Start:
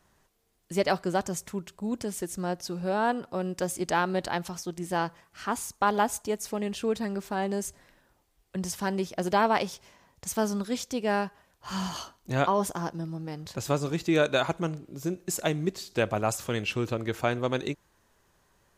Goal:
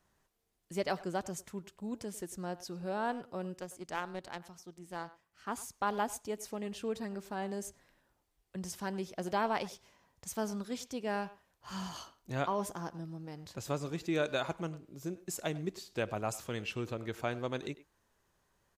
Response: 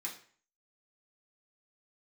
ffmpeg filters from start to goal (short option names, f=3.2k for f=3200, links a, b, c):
-filter_complex "[0:a]asettb=1/sr,asplit=3[a][b][c];[a]atrim=end=3.574[d];[b]atrim=start=3.57:end=5.47,asetpts=PTS-STARTPTS,afade=t=in:d=0.004:c=qsin,afade=t=out:st=1.896:d=0.004:c=qsin,aeval=exprs='0.224*(cos(1*acos(clip(val(0)/0.224,-1,1)))-cos(1*PI/2))+0.0447*(cos(3*acos(clip(val(0)/0.224,-1,1)))-cos(3*PI/2))':c=same[e];[c]atrim=start=5.466[f];[d][e]acrossfade=d=0.004:c1=hsin:c2=qsin[g];[g][f]acrossfade=d=0.004:c1=qsin:c2=hsin,asplit=2[h][i];[i]adelay=100,highpass=300,lowpass=3.4k,asoftclip=type=hard:threshold=-20.5dB,volume=-16dB[j];[h][j]amix=inputs=2:normalize=0,volume=-8.5dB"